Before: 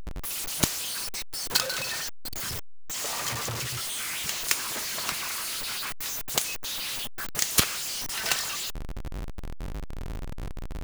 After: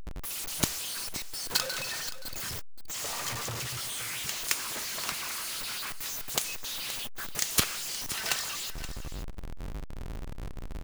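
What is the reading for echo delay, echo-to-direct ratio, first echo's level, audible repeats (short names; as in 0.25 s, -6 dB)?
0.524 s, -13.5 dB, -13.5 dB, 1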